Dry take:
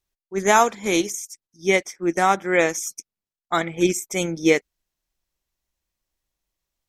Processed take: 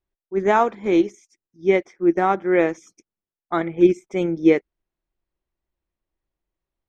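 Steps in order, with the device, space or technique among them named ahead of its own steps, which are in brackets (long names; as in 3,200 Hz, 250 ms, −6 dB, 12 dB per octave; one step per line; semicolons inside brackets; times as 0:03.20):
phone in a pocket (low-pass filter 3,500 Hz 12 dB per octave; parametric band 350 Hz +6 dB 0.42 octaves; high-shelf EQ 2,200 Hz −11 dB)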